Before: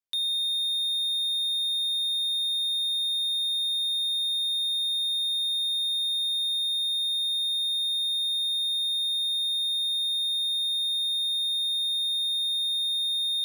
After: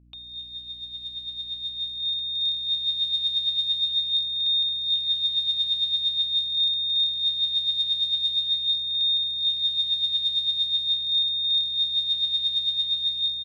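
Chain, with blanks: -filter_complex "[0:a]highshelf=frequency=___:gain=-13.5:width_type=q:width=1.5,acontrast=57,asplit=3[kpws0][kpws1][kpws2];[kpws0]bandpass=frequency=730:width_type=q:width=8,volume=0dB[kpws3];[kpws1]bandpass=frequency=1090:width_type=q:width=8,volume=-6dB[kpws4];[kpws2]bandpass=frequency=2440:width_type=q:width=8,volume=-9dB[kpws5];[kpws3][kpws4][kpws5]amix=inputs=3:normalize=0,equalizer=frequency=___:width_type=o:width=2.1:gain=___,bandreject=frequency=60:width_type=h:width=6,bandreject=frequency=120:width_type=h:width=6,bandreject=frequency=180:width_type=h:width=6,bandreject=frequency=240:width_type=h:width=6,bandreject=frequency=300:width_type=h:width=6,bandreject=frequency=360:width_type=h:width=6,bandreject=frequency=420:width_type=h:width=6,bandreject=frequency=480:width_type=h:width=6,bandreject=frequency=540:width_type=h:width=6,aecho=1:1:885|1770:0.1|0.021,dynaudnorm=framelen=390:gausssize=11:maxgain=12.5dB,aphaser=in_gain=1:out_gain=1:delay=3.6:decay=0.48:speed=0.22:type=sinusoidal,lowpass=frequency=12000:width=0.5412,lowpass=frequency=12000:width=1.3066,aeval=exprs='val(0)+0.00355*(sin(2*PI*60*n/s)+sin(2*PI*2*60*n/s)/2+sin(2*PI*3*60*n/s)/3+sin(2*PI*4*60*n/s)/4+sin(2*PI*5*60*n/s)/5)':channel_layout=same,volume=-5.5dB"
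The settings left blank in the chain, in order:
4500, 6300, 13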